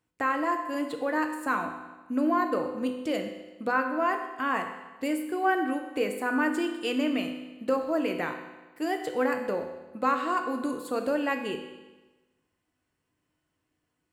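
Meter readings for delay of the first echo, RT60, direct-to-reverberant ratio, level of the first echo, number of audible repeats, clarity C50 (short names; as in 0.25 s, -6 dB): none, 1.2 s, 4.0 dB, none, none, 7.0 dB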